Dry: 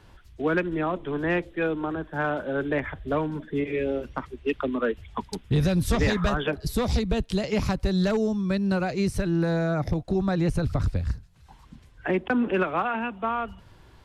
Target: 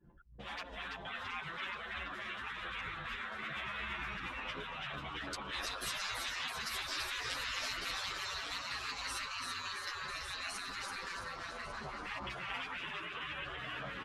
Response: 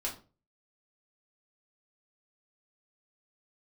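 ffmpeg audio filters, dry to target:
-filter_complex "[0:a]highpass=80,highshelf=f=11k:g=-10.5,aecho=1:1:5.8:0.75,asplit=2[a][b];[b]aecho=0:1:1147:0.224[c];[a][c]amix=inputs=2:normalize=0,acrossover=split=680|3400[d][e][f];[d]acompressor=threshold=-24dB:ratio=4[g];[e]acompressor=threshold=-39dB:ratio=4[h];[f]acompressor=threshold=-46dB:ratio=4[i];[g][h][i]amix=inputs=3:normalize=0,asplit=2[j][k];[k]asplit=8[l][m][n][o][p][q][r][s];[l]adelay=334,afreqshift=140,volume=-4.5dB[t];[m]adelay=668,afreqshift=280,volume=-9.4dB[u];[n]adelay=1002,afreqshift=420,volume=-14.3dB[v];[o]adelay=1336,afreqshift=560,volume=-19.1dB[w];[p]adelay=1670,afreqshift=700,volume=-24dB[x];[q]adelay=2004,afreqshift=840,volume=-28.9dB[y];[r]adelay=2338,afreqshift=980,volume=-33.8dB[z];[s]adelay=2672,afreqshift=1120,volume=-38.7dB[aa];[t][u][v][w][x][y][z][aa]amix=inputs=8:normalize=0[ab];[j][ab]amix=inputs=2:normalize=0,anlmdn=0.0251,adynamicequalizer=threshold=0.00447:dfrequency=880:dqfactor=2.4:tfrequency=880:tqfactor=2.4:attack=5:release=100:ratio=0.375:range=3.5:mode=boostabove:tftype=bell,afftfilt=real='re*lt(hypot(re,im),0.0398)':imag='im*lt(hypot(re,im),0.0398)':win_size=1024:overlap=0.75,asplit=2[ac][ad];[ad]adelay=10.1,afreqshift=-0.6[ae];[ac][ae]amix=inputs=2:normalize=1,volume=5.5dB"

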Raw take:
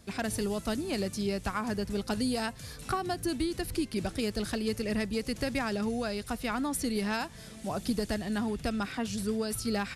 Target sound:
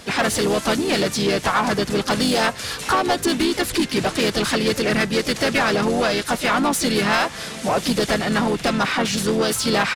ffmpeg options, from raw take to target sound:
-filter_complex "[0:a]asplit=4[a][b][c][d];[b]asetrate=29433,aresample=44100,atempo=1.49831,volume=-9dB[e];[c]asetrate=35002,aresample=44100,atempo=1.25992,volume=-6dB[f];[d]asetrate=52444,aresample=44100,atempo=0.840896,volume=-11dB[g];[a][e][f][g]amix=inputs=4:normalize=0,asplit=2[h][i];[i]highpass=f=720:p=1,volume=20dB,asoftclip=type=tanh:threshold=-15dB[j];[h][j]amix=inputs=2:normalize=0,lowpass=f=4.7k:p=1,volume=-6dB,volume=5.5dB"

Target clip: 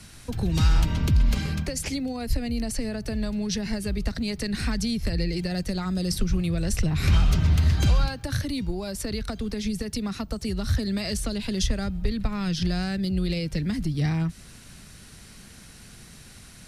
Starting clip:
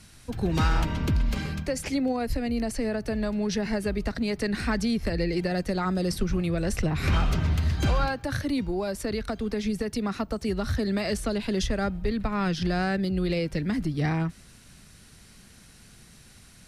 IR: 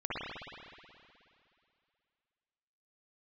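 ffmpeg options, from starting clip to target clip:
-filter_complex "[0:a]acrossover=split=180|3000[a][b][c];[b]acompressor=threshold=-38dB:ratio=6[d];[a][d][c]amix=inputs=3:normalize=0,volume=5dB"

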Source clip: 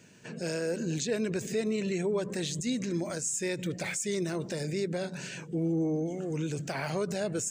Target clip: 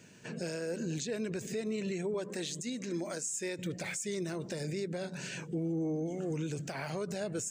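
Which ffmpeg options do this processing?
-filter_complex "[0:a]asettb=1/sr,asplit=3[a][b][c];[a]atrim=end=2.144[d];[b]atrim=start=2.14:end=3.59,asetpts=PTS-STARTPTS,afade=t=in:d=0.004:c=qsin,afade=t=out:st=1.446:d=0.004:c=qsin,highpass=210[e];[c]atrim=start=3.586[f];[d][e]acrossfade=d=0.004:c1=hsin:c2=qsin[g];[g][f]acrossfade=d=0.004:c1=qsin:c2=hsin,alimiter=level_in=3dB:limit=-24dB:level=0:latency=1:release=395,volume=-3dB"

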